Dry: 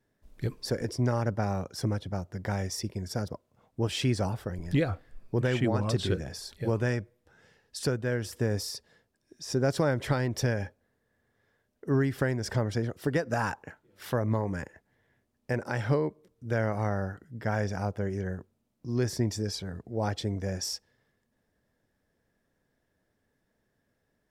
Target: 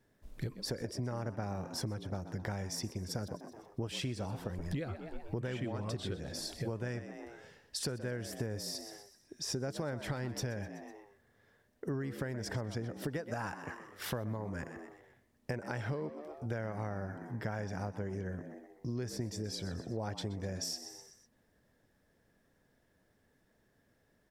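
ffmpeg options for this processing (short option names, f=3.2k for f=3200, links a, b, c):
-filter_complex "[0:a]asplit=5[a][b][c][d][e];[b]adelay=125,afreqshift=75,volume=-15dB[f];[c]adelay=250,afreqshift=150,volume=-21.7dB[g];[d]adelay=375,afreqshift=225,volume=-28.5dB[h];[e]adelay=500,afreqshift=300,volume=-35.2dB[i];[a][f][g][h][i]amix=inputs=5:normalize=0,acompressor=threshold=-39dB:ratio=6,volume=3.5dB"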